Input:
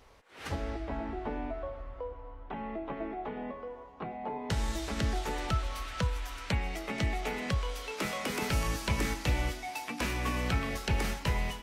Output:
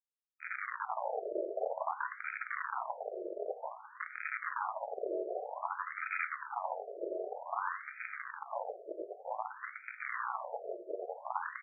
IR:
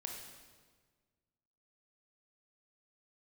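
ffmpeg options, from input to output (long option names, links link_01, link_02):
-filter_complex "[0:a]lowshelf=frequency=170:gain=7,acompressor=threshold=-26dB:ratio=10,alimiter=level_in=10dB:limit=-24dB:level=0:latency=1:release=265,volume=-10dB,acrusher=bits=5:mix=0:aa=0.000001,asplit=2[link_01][link_02];[link_02]adelay=17,volume=-13dB[link_03];[link_01][link_03]amix=inputs=2:normalize=0,asplit=2[link_04][link_05];[link_05]adelay=948,lowpass=frequency=3300:poles=1,volume=-17.5dB,asplit=2[link_06][link_07];[link_07]adelay=948,lowpass=frequency=3300:poles=1,volume=0.49,asplit=2[link_08][link_09];[link_09]adelay=948,lowpass=frequency=3300:poles=1,volume=0.49,asplit=2[link_10][link_11];[link_11]adelay=948,lowpass=frequency=3300:poles=1,volume=0.49[link_12];[link_04][link_06][link_08][link_10][link_12]amix=inputs=5:normalize=0,asplit=2[link_13][link_14];[1:a]atrim=start_sample=2205[link_15];[link_14][link_15]afir=irnorm=-1:irlink=0,volume=-1dB[link_16];[link_13][link_16]amix=inputs=2:normalize=0,afftfilt=real='re*between(b*sr/1024,470*pow(1800/470,0.5+0.5*sin(2*PI*0.53*pts/sr))/1.41,470*pow(1800/470,0.5+0.5*sin(2*PI*0.53*pts/sr))*1.41)':imag='im*between(b*sr/1024,470*pow(1800/470,0.5+0.5*sin(2*PI*0.53*pts/sr))/1.41,470*pow(1800/470,0.5+0.5*sin(2*PI*0.53*pts/sr))*1.41)':win_size=1024:overlap=0.75,volume=8dB"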